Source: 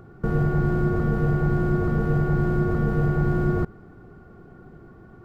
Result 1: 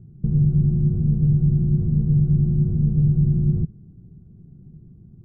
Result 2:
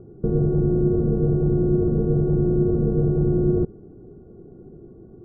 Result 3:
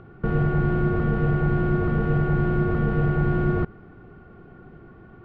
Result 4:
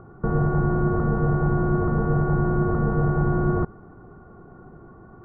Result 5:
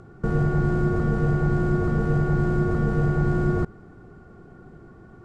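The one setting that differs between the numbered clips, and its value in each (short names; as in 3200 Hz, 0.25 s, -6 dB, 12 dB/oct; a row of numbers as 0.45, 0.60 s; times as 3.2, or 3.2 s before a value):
synth low-pass, frequency: 160, 420, 2900, 1100, 8000 Hz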